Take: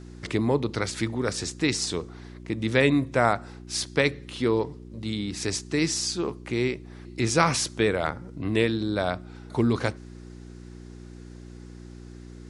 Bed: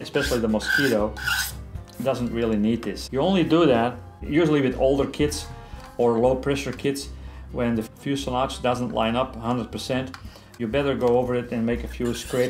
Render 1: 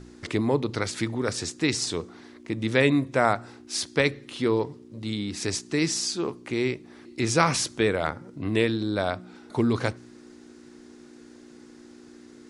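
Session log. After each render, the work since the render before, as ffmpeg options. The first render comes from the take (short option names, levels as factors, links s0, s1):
-af "bandreject=f=60:t=h:w=4,bandreject=f=120:t=h:w=4,bandreject=f=180:t=h:w=4"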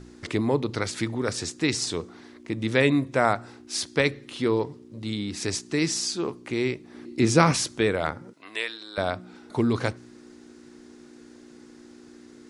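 -filter_complex "[0:a]asettb=1/sr,asplit=3[s0][s1][s2];[s0]atrim=end=6.944[s3];[s1]atrim=start=6.94:end=7.52,asetpts=PTS-STARTPTS,afade=t=in:d=0.004:c=qsin,afade=t=out:st=0.576:d=0.004:c=qsin,equalizer=f=230:t=o:w=2.1:g=7[s4];[s2]atrim=start=7.516[s5];[s3][s4]acrossfade=d=0.004:c1=hsin:c2=qsin[s6];[s6][s5]acrossfade=d=0.004:c1=qsin:c2=hsin,asettb=1/sr,asplit=3[s7][s8][s9];[s7]atrim=end=8.334[s10];[s8]atrim=start=8.33:end=8.98,asetpts=PTS-STARTPTS,afade=t=in:d=0.004:c=qsin,afade=t=out:st=0.646:d=0.004:c=qsin,highpass=980[s11];[s9]atrim=start=8.976[s12];[s10][s11]acrossfade=d=0.004:c1=hsin:c2=qsin[s13];[s13][s12]acrossfade=d=0.004:c1=qsin:c2=hsin"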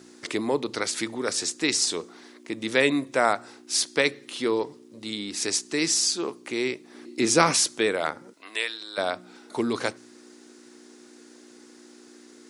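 -af "highpass=270,highshelf=f=4700:g=8.5"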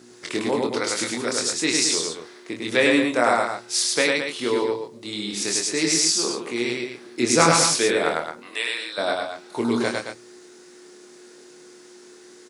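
-filter_complex "[0:a]asplit=2[s0][s1];[s1]adelay=25,volume=0.596[s2];[s0][s2]amix=inputs=2:normalize=0,aecho=1:1:102|218.7:0.794|0.398"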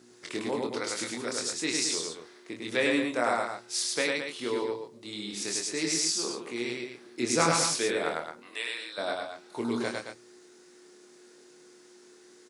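-af "volume=0.398"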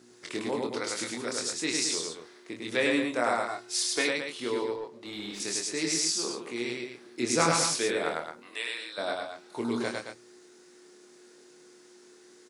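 -filter_complex "[0:a]asettb=1/sr,asplit=3[s0][s1][s2];[s0]atrim=end=3.484[s3];[s1]atrim=start=3.48:end=4.09,asetpts=PTS-STARTPTS,afade=t=in:d=0.004:c=qsin,afade=t=out:st=0.606:d=0.004:c=qsin,aecho=1:1:2.8:0.65,atrim=end_sample=26901[s4];[s2]atrim=start=4.086[s5];[s3][s4]acrossfade=d=0.004:c1=hsin:c2=qsin[s6];[s6][s5]acrossfade=d=0.004:c1=qsin:c2=hsin,asettb=1/sr,asplit=3[s7][s8][s9];[s7]atrim=end=4.764[s10];[s8]atrim=start=4.76:end=5.4,asetpts=PTS-STARTPTS,afade=t=in:d=0.004:c=qsin,afade=t=out:st=0.636:d=0.004:c=qsin,asplit=2[s11][s12];[s12]highpass=f=720:p=1,volume=5.01,asoftclip=type=tanh:threshold=0.0562[s13];[s11][s13]amix=inputs=2:normalize=0,lowpass=f=1600:p=1,volume=0.501[s14];[s9]atrim=start=5.396[s15];[s10][s14]acrossfade=d=0.004:c1=hsin:c2=qsin[s16];[s16][s15]acrossfade=d=0.004:c1=qsin:c2=hsin"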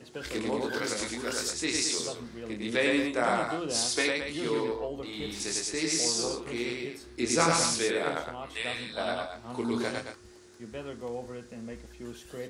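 -filter_complex "[1:a]volume=0.141[s0];[0:a][s0]amix=inputs=2:normalize=0"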